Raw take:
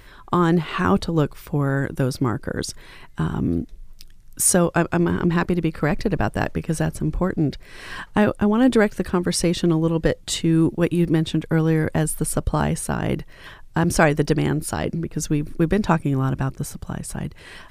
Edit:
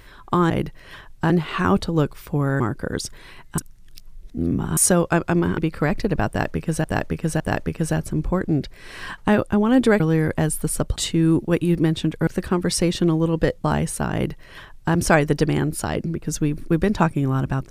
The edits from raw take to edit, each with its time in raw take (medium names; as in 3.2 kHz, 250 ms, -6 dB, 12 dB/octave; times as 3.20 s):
1.80–2.24 s: delete
3.22–4.41 s: reverse
5.22–5.59 s: delete
6.29–6.85 s: loop, 3 plays
8.89–10.26 s: swap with 11.57–12.53 s
13.03–13.83 s: copy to 0.50 s